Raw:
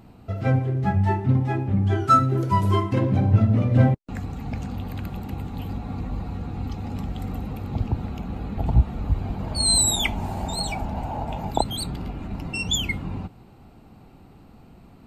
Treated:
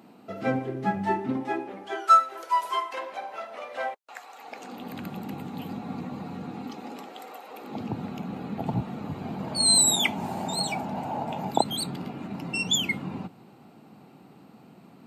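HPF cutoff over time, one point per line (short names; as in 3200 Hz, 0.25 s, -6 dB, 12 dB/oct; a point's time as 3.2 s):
HPF 24 dB/oct
1.17 s 200 Hz
2.24 s 650 Hz
4.32 s 650 Hz
5.01 s 160 Hz
6.44 s 160 Hz
7.44 s 540 Hz
7.89 s 150 Hz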